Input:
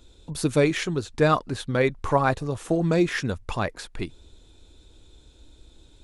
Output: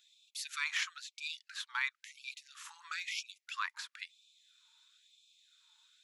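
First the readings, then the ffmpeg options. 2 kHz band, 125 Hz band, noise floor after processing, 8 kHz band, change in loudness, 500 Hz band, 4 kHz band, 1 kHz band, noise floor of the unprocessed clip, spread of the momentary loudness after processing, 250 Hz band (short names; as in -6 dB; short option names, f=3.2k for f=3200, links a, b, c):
-7.0 dB, under -40 dB, -85 dBFS, -7.5 dB, -15.0 dB, under -40 dB, -4.5 dB, -18.5 dB, -54 dBFS, 14 LU, under -40 dB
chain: -af "equalizer=f=9.3k:t=o:w=0.23:g=-14,afftfilt=real='re*gte(b*sr/1024,830*pow(2300/830,0.5+0.5*sin(2*PI*1*pts/sr)))':imag='im*gte(b*sr/1024,830*pow(2300/830,0.5+0.5*sin(2*PI*1*pts/sr)))':win_size=1024:overlap=0.75,volume=-4.5dB"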